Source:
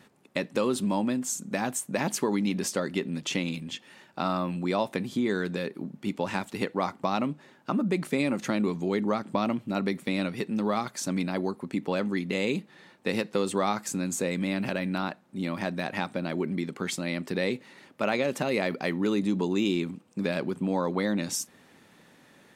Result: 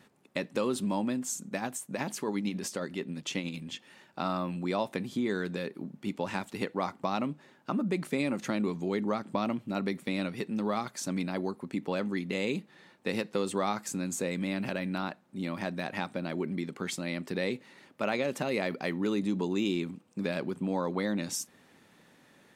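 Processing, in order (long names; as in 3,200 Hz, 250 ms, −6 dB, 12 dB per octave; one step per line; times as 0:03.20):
0:01.47–0:03.55: amplitude tremolo 11 Hz, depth 44%
level −3.5 dB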